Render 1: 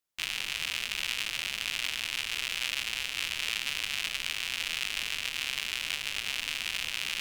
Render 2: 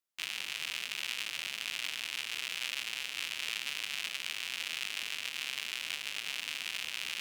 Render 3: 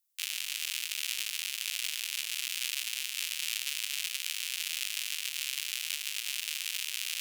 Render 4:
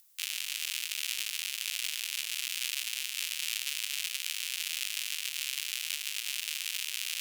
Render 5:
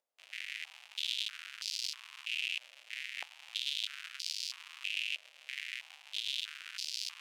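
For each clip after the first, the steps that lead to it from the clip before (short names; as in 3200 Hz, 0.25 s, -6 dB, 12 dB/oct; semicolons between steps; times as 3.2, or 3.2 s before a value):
Bessel high-pass 190 Hz, order 2; gain -4.5 dB
differentiator; gain +8.5 dB
upward compressor, threshold -49 dBFS
stepped band-pass 3.1 Hz 590–4800 Hz; gain +5 dB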